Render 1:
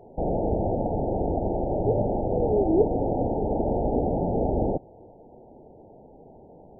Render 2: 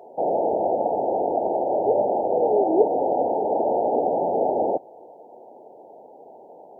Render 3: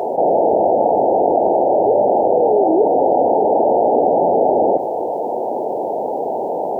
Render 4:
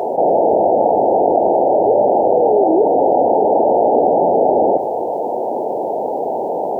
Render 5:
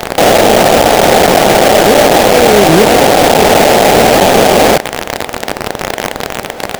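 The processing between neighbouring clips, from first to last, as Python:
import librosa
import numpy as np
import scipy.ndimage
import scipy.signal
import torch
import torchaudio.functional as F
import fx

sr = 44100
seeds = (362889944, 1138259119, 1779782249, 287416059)

y1 = scipy.signal.sosfilt(scipy.signal.butter(2, 570.0, 'highpass', fs=sr, output='sos'), x)
y1 = y1 * 10.0 ** (9.0 / 20.0)
y2 = fx.env_flatten(y1, sr, amount_pct=70)
y2 = y2 * 10.0 ** (1.5 / 20.0)
y3 = y2 + 10.0 ** (-18.5 / 20.0) * np.pad(y2, (int(296 * sr / 1000.0), 0))[:len(y2)]
y3 = y3 * 10.0 ** (1.0 / 20.0)
y4 = fx.octave_divider(y3, sr, octaves=1, level_db=0.0)
y4 = fx.quant_companded(y4, sr, bits=2)
y4 = y4 * 10.0 ** (-1.0 / 20.0)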